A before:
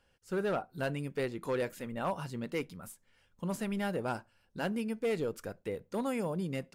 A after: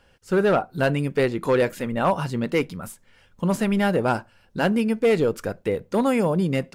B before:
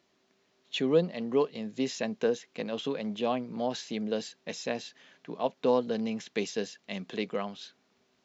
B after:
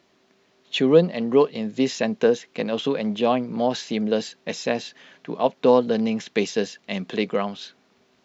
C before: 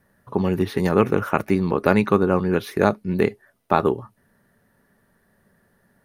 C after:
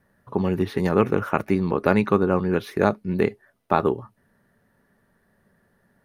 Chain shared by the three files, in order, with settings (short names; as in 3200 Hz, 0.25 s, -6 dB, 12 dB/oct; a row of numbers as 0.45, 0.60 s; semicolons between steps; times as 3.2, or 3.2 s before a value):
high shelf 5600 Hz -5.5 dB; match loudness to -23 LUFS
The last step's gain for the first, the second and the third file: +13.0, +9.0, -1.5 dB